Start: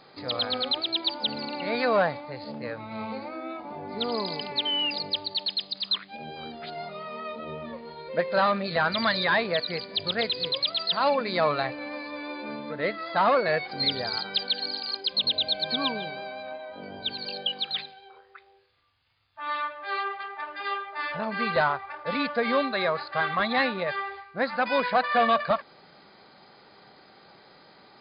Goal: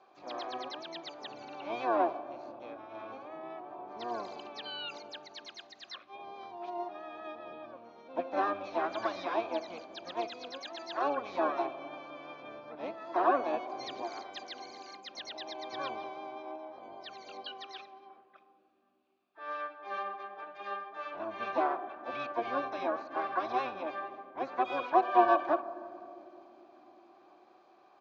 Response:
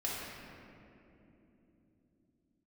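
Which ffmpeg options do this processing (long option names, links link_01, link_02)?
-filter_complex "[0:a]asplit=3[link_01][link_02][link_03];[link_01]bandpass=frequency=730:width_type=q:width=8,volume=0dB[link_04];[link_02]bandpass=frequency=1090:width_type=q:width=8,volume=-6dB[link_05];[link_03]bandpass=frequency=2440:width_type=q:width=8,volume=-9dB[link_06];[link_04][link_05][link_06]amix=inputs=3:normalize=0,asplit=4[link_07][link_08][link_09][link_10];[link_08]asetrate=22050,aresample=44100,atempo=2,volume=-7dB[link_11];[link_09]asetrate=58866,aresample=44100,atempo=0.749154,volume=-9dB[link_12];[link_10]asetrate=66075,aresample=44100,atempo=0.66742,volume=-14dB[link_13];[link_07][link_11][link_12][link_13]amix=inputs=4:normalize=0,asplit=2[link_14][link_15];[1:a]atrim=start_sample=2205,lowpass=1400,adelay=63[link_16];[link_15][link_16]afir=irnorm=-1:irlink=0,volume=-17dB[link_17];[link_14][link_17]amix=inputs=2:normalize=0"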